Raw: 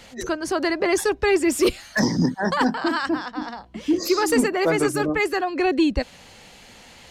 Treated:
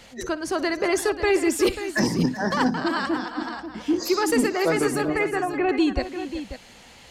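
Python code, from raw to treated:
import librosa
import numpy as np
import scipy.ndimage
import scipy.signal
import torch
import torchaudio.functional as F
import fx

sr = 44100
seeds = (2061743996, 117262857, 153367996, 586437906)

y = fx.lowpass(x, sr, hz=2500.0, slope=24, at=(5.08, 5.69))
y = fx.echo_multitap(y, sr, ms=(59, 377, 539), db=(-18.0, -14.5, -11.0))
y = y * 10.0 ** (-2.0 / 20.0)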